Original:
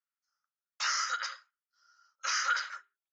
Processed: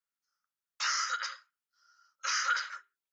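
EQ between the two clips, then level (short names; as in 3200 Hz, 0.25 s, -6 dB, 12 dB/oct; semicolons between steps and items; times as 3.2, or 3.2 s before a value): bell 720 Hz -7.5 dB 0.33 oct; 0.0 dB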